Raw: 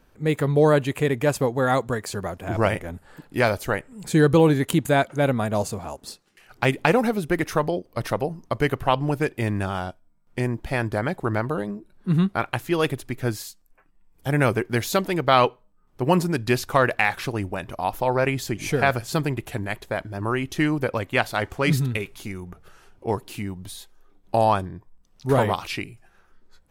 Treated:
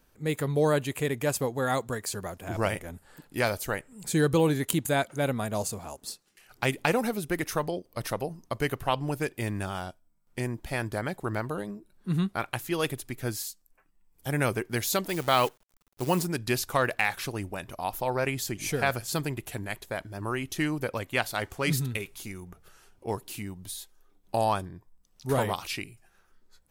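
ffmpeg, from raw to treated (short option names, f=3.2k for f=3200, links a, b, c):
-filter_complex "[0:a]asettb=1/sr,asplit=3[a][b][c];[a]atrim=end=15.094[d];[b]atrim=start=15.09:end=16.26,asetpts=PTS-STARTPTS,afade=t=in:d=0.004:c=qsin,afade=t=out:st=1.166:d=0.004:c=qsin,acrusher=bits=7:dc=4:mix=0:aa=0.000001[e];[c]atrim=start=16.256[f];[d][e]acrossfade=d=0.004:c1=hsin:c2=qsin[g];[g][f]acrossfade=d=0.004:c1=qsin:c2=hsin,highshelf=f=4.5k:g=11,volume=-7dB"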